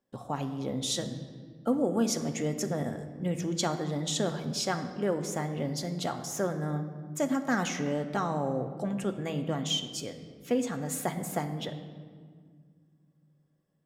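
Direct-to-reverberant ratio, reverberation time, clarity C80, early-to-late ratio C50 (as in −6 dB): 5.5 dB, 1.9 s, 11.0 dB, 10.0 dB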